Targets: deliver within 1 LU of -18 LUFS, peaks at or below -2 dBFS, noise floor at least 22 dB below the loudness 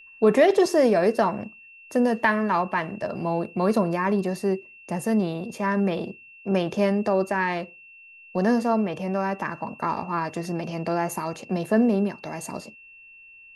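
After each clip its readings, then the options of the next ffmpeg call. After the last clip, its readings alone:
steady tone 2700 Hz; tone level -46 dBFS; loudness -24.5 LUFS; peak -6.5 dBFS; loudness target -18.0 LUFS
-> -af "bandreject=f=2.7k:w=30"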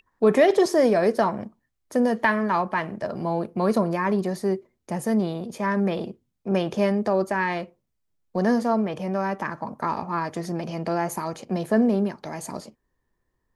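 steady tone none; loudness -24.5 LUFS; peak -6.5 dBFS; loudness target -18.0 LUFS
-> -af "volume=6.5dB,alimiter=limit=-2dB:level=0:latency=1"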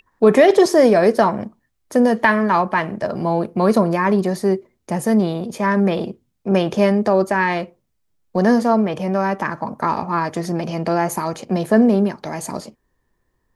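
loudness -18.0 LUFS; peak -2.0 dBFS; noise floor -70 dBFS

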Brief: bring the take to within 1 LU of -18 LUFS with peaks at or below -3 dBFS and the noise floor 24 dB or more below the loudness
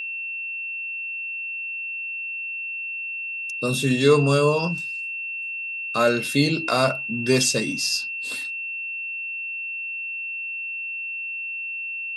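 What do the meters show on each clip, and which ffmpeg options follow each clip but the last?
steady tone 2700 Hz; tone level -28 dBFS; loudness -24.5 LUFS; peak -5.5 dBFS; loudness target -18.0 LUFS
-> -af "bandreject=f=2.7k:w=30"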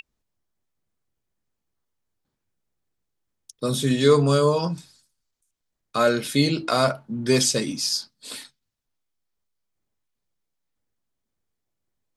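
steady tone none; loudness -22.0 LUFS; peak -5.5 dBFS; loudness target -18.0 LUFS
-> -af "volume=4dB,alimiter=limit=-3dB:level=0:latency=1"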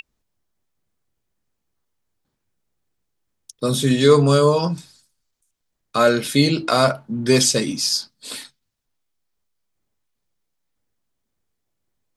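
loudness -18.0 LUFS; peak -3.0 dBFS; noise floor -77 dBFS

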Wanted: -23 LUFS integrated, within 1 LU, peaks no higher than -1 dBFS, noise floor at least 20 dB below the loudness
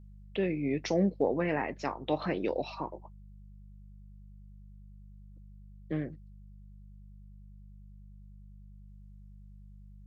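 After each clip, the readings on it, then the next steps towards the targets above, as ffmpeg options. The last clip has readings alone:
hum 50 Hz; harmonics up to 200 Hz; hum level -48 dBFS; loudness -32.5 LUFS; peak -15.0 dBFS; loudness target -23.0 LUFS
-> -af "bandreject=f=50:t=h:w=4,bandreject=f=100:t=h:w=4,bandreject=f=150:t=h:w=4,bandreject=f=200:t=h:w=4"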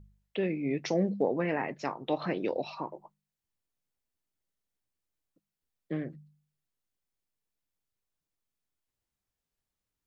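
hum none; loudness -33.0 LUFS; peak -15.5 dBFS; loudness target -23.0 LUFS
-> -af "volume=10dB"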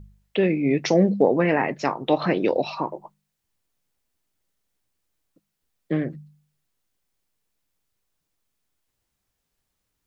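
loudness -23.0 LUFS; peak -5.5 dBFS; noise floor -79 dBFS

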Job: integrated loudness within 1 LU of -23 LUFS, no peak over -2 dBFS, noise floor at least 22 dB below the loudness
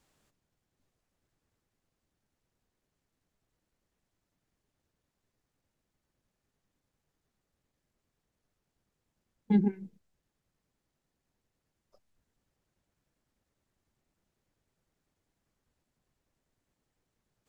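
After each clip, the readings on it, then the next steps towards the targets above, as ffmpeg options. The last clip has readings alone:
loudness -28.5 LUFS; peak -14.5 dBFS; loudness target -23.0 LUFS
-> -af "volume=5.5dB"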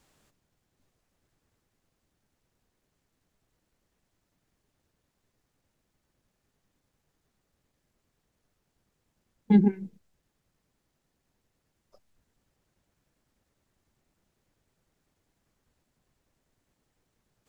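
loudness -23.0 LUFS; peak -9.0 dBFS; noise floor -80 dBFS

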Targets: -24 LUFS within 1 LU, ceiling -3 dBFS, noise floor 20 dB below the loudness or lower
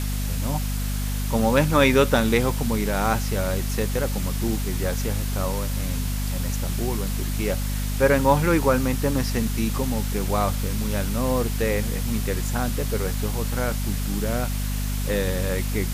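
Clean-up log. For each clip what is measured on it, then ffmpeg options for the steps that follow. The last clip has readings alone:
hum 50 Hz; harmonics up to 250 Hz; hum level -23 dBFS; noise floor -26 dBFS; noise floor target -44 dBFS; loudness -24.0 LUFS; peak -4.5 dBFS; loudness target -24.0 LUFS
-> -af "bandreject=f=50:t=h:w=6,bandreject=f=100:t=h:w=6,bandreject=f=150:t=h:w=6,bandreject=f=200:t=h:w=6,bandreject=f=250:t=h:w=6"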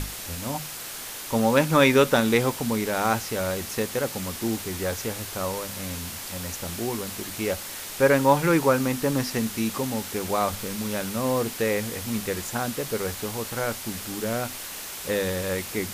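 hum none; noise floor -37 dBFS; noise floor target -46 dBFS
-> -af "afftdn=nr=9:nf=-37"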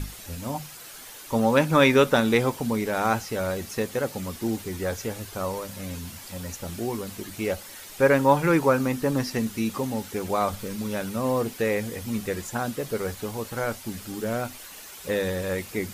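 noise floor -43 dBFS; noise floor target -46 dBFS
-> -af "afftdn=nr=6:nf=-43"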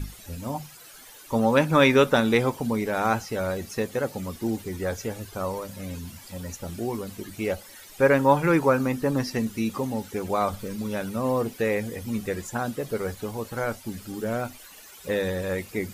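noise floor -47 dBFS; loudness -26.0 LUFS; peak -5.5 dBFS; loudness target -24.0 LUFS
-> -af "volume=2dB"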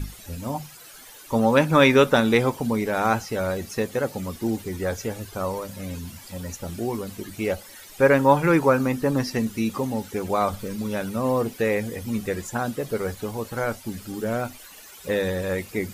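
loudness -24.0 LUFS; peak -3.5 dBFS; noise floor -45 dBFS

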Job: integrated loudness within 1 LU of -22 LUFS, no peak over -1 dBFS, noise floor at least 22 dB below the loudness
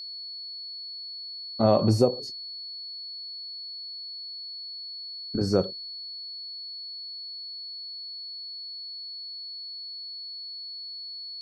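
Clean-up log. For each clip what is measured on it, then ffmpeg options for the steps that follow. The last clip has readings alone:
steady tone 4400 Hz; tone level -36 dBFS; loudness -31.5 LUFS; peak -7.5 dBFS; loudness target -22.0 LUFS
-> -af "bandreject=f=4.4k:w=30"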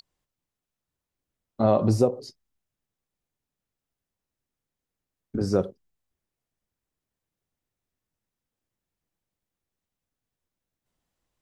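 steady tone none; loudness -24.5 LUFS; peak -7.5 dBFS; loudness target -22.0 LUFS
-> -af "volume=2.5dB"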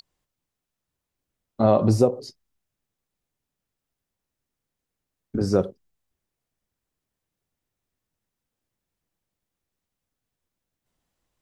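loudness -22.0 LUFS; peak -5.0 dBFS; noise floor -85 dBFS

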